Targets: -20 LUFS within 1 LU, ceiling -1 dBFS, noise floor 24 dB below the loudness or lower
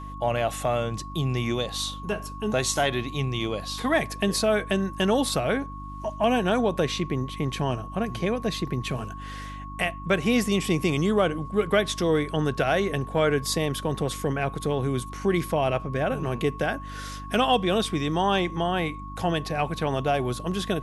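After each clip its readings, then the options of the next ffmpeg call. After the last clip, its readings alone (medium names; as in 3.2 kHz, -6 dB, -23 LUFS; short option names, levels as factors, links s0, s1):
hum 50 Hz; highest harmonic 300 Hz; hum level -37 dBFS; steady tone 1.1 kHz; tone level -39 dBFS; loudness -26.0 LUFS; peak level -10.0 dBFS; loudness target -20.0 LUFS
-> -af "bandreject=f=50:t=h:w=4,bandreject=f=100:t=h:w=4,bandreject=f=150:t=h:w=4,bandreject=f=200:t=h:w=4,bandreject=f=250:t=h:w=4,bandreject=f=300:t=h:w=4"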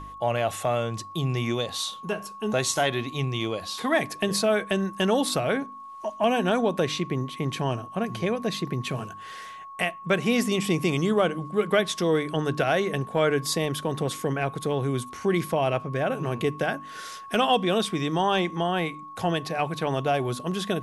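hum not found; steady tone 1.1 kHz; tone level -39 dBFS
-> -af "bandreject=f=1100:w=30"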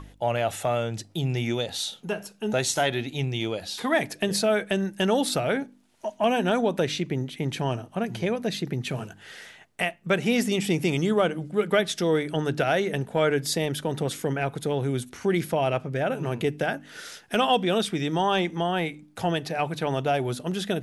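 steady tone not found; loudness -26.5 LUFS; peak level -10.0 dBFS; loudness target -20.0 LUFS
-> -af "volume=2.11"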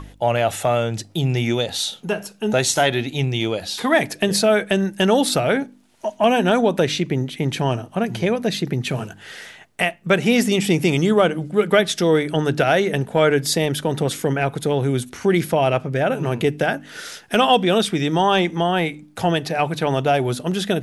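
loudness -20.0 LUFS; peak level -3.5 dBFS; noise floor -47 dBFS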